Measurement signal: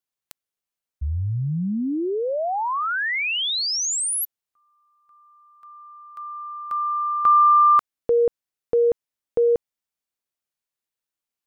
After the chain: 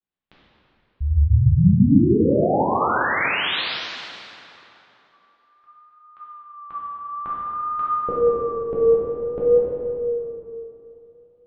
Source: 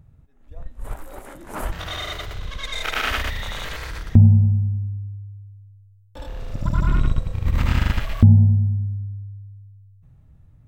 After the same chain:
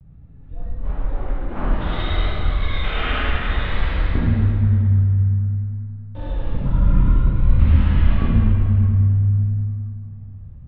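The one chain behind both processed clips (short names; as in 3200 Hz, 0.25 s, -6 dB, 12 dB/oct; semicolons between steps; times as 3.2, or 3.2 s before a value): compressor 3:1, threshold -23 dBFS; steep low-pass 3700 Hz 36 dB/oct; low shelf 400 Hz +10 dB; plate-style reverb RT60 3.1 s, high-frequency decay 0.7×, DRR -9 dB; vibrato 0.54 Hz 47 cents; gain -7 dB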